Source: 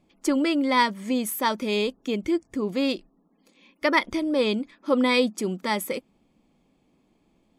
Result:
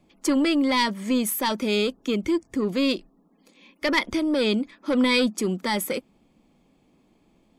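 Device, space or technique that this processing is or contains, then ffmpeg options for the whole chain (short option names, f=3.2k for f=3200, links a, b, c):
one-band saturation: -filter_complex "[0:a]acrossover=split=270|2300[a][b][c];[b]asoftclip=type=tanh:threshold=-25.5dB[d];[a][d][c]amix=inputs=3:normalize=0,volume=3.5dB"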